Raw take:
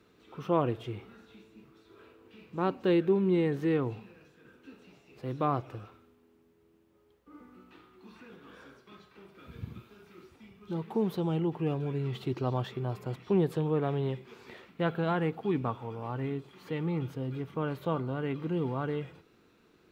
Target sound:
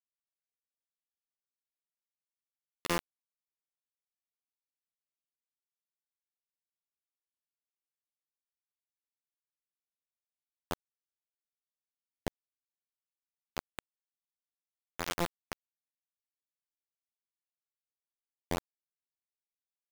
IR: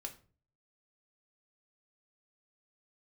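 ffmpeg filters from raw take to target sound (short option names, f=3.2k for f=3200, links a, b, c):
-filter_complex "[0:a]afftfilt=real='re*pow(10,15/40*sin(2*PI*(0.62*log(max(b,1)*sr/1024/100)/log(2)-(-0.79)*(pts-256)/sr)))':imag='im*pow(10,15/40*sin(2*PI*(0.62*log(max(b,1)*sr/1024/100)/log(2)-(-0.79)*(pts-256)/sr)))':win_size=1024:overlap=0.75,acompressor=threshold=-42dB:ratio=4,afftfilt=real='hypot(re,im)*cos(PI*b)':imag='0':win_size=2048:overlap=0.75,afftfilt=real='re*gte(hypot(re,im),0.00631)':imag='im*gte(hypot(re,im),0.00631)':win_size=1024:overlap=0.75,asplit=2[a][b];[b]adelay=209,lowpass=f=2.8k:p=1,volume=-10.5dB,asplit=2[c][d];[d]adelay=209,lowpass=f=2.8k:p=1,volume=0.39,asplit=2[e][f];[f]adelay=209,lowpass=f=2.8k:p=1,volume=0.39,asplit=2[g][h];[h]adelay=209,lowpass=f=2.8k:p=1,volume=0.39[i];[a][c][e][g][i]amix=inputs=5:normalize=0,acrossover=split=100[j][k];[k]acrusher=bits=5:mode=log:mix=0:aa=0.000001[l];[j][l]amix=inputs=2:normalize=0,tremolo=f=0.65:d=0.87,acrusher=bits=5:mix=0:aa=0.000001,volume=10.5dB"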